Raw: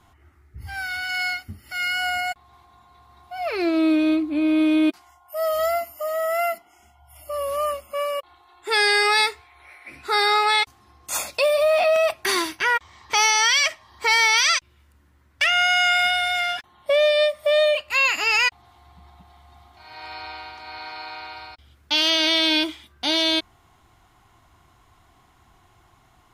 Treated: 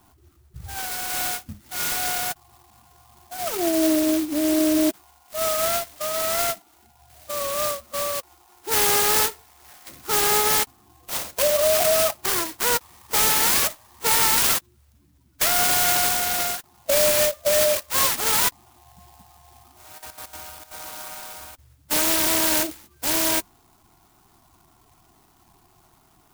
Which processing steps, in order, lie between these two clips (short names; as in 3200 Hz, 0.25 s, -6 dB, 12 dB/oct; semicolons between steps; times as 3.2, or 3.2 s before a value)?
bin magnitudes rounded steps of 30 dB; 19.97–20.76 step gate "x.x.x.xxx" 197 bpm -12 dB; clock jitter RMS 0.13 ms